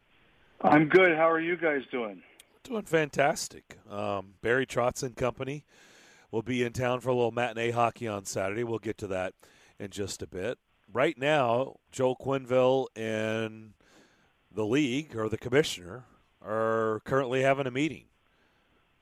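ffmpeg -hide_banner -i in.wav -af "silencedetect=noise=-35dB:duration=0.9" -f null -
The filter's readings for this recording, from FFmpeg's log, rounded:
silence_start: 13.48
silence_end: 14.57 | silence_duration: 1.09
silence_start: 17.97
silence_end: 19.01 | silence_duration: 1.04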